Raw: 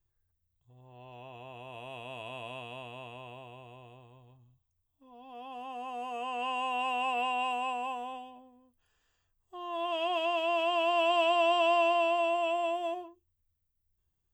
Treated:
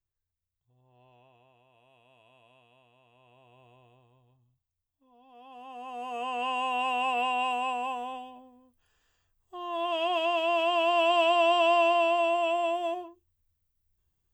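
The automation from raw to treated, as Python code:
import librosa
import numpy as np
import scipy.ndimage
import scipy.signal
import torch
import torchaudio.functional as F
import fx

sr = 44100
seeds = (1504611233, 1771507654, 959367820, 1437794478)

y = fx.gain(x, sr, db=fx.line((1.05, -10.0), (1.69, -19.0), (3.03, -19.0), (3.64, -7.5), (5.33, -7.5), (6.21, 3.0)))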